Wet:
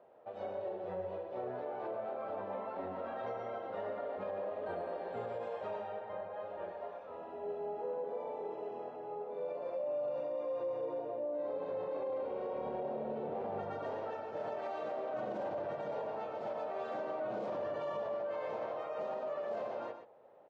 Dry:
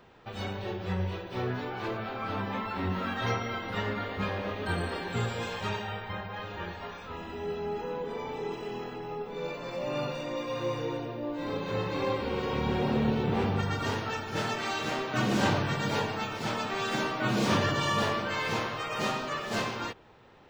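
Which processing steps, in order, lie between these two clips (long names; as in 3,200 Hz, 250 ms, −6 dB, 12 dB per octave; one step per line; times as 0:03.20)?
resonant band-pass 600 Hz, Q 4.6
single-tap delay 122 ms −9 dB
brickwall limiter −36 dBFS, peak gain reduction 11 dB
level +5 dB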